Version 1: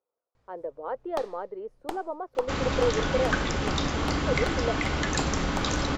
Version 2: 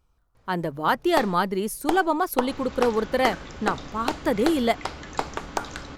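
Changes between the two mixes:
speech: remove ladder band-pass 550 Hz, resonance 65%; first sound +8.5 dB; second sound -12.0 dB

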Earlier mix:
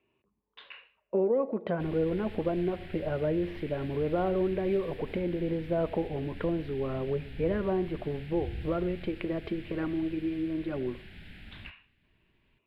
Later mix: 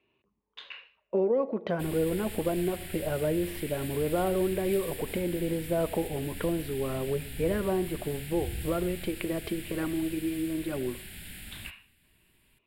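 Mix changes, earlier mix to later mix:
background: send on; master: remove distance through air 270 m

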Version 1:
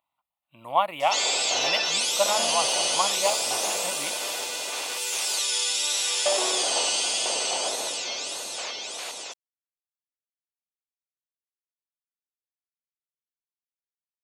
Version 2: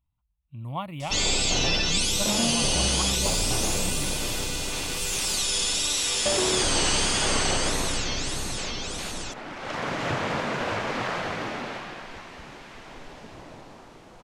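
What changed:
speech -8.5 dB; second sound: unmuted; master: remove resonant high-pass 640 Hz, resonance Q 1.5

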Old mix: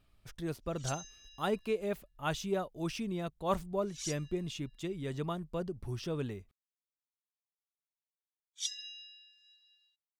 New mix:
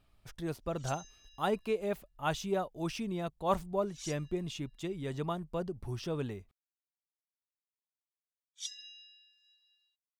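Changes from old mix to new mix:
background -4.5 dB; master: add peaking EQ 820 Hz +4 dB 0.84 oct

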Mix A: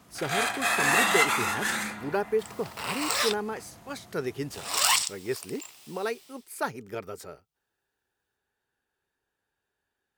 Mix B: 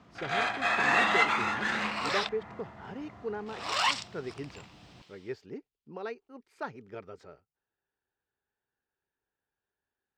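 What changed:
speech -6.5 dB; second sound: entry -1.05 s; master: add distance through air 180 m

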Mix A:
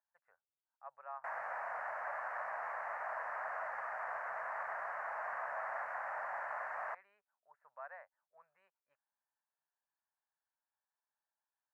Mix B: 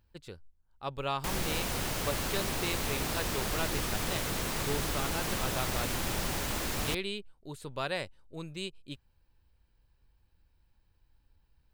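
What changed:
speech +11.5 dB; master: remove elliptic band-pass 640–1800 Hz, stop band 40 dB

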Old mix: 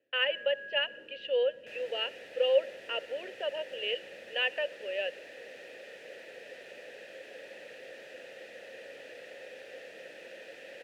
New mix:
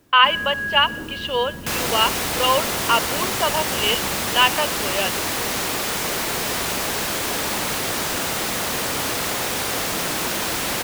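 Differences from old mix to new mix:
first sound +7.0 dB; second sound +10.5 dB; master: remove vowel filter e

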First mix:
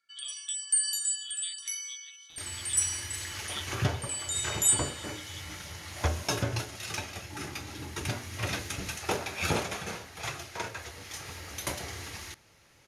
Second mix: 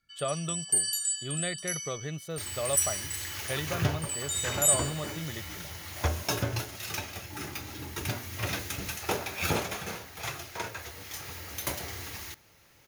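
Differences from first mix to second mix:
speech: remove ladder band-pass 3.4 kHz, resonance 85%; master: remove low-pass 11 kHz 24 dB/octave

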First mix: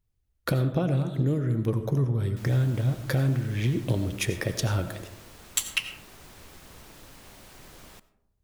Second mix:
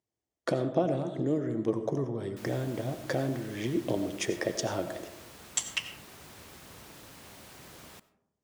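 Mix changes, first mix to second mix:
speech: add cabinet simulation 260–7900 Hz, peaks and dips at 330 Hz +4 dB, 670 Hz +6 dB, 1.4 kHz -7 dB, 2.5 kHz -7 dB, 4 kHz -8 dB; background: add high-pass 80 Hz

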